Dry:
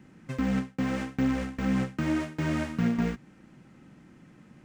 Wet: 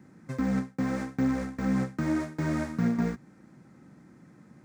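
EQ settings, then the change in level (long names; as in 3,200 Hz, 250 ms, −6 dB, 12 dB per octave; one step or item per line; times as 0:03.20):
high-pass filter 74 Hz
parametric band 2,900 Hz −13.5 dB 0.5 octaves
0.0 dB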